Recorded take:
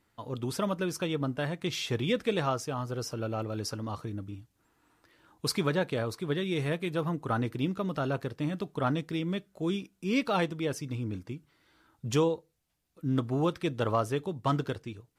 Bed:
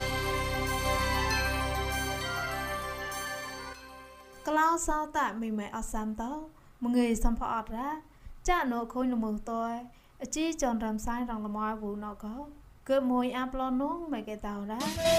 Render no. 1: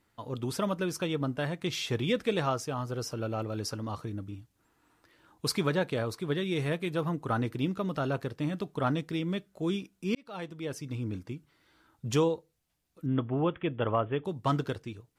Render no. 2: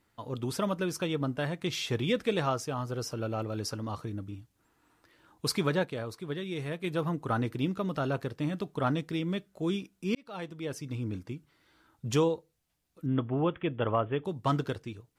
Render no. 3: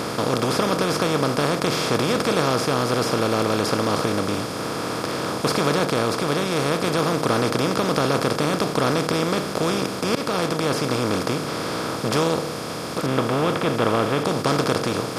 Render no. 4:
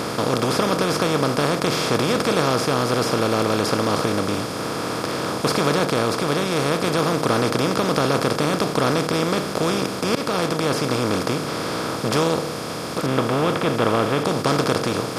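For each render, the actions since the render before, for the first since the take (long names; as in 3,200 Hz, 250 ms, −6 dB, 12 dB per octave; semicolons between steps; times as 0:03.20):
0:10.15–0:11.04: fade in linear; 0:13.06–0:14.25: Chebyshev low-pass filter 3,400 Hz, order 8
0:05.85–0:06.84: clip gain −5 dB
compressor on every frequency bin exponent 0.2
level +1 dB; brickwall limiter −3 dBFS, peak gain reduction 2 dB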